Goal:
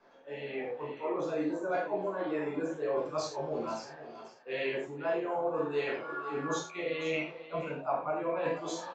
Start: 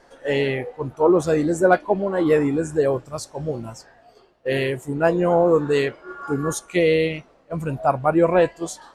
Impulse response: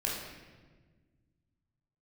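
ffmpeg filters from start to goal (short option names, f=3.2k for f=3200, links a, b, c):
-filter_complex "[0:a]acrossover=split=160 4300:gain=0.126 1 0.224[a][b][c];[a][b][c]amix=inputs=3:normalize=0,bandreject=f=83.82:t=h:w=4,bandreject=f=167.64:t=h:w=4,bandreject=f=251.46:t=h:w=4,areverse,acompressor=threshold=-31dB:ratio=6,areverse,aecho=1:1:493:0.211,acrossover=split=420[d][e];[e]dynaudnorm=f=210:g=7:m=9dB[f];[d][f]amix=inputs=2:normalize=0[g];[1:a]atrim=start_sample=2205,afade=t=out:st=0.23:d=0.01,atrim=end_sample=10584,asetrate=66150,aresample=44100[h];[g][h]afir=irnorm=-1:irlink=0,aresample=16000,aresample=44100,volume=-7.5dB"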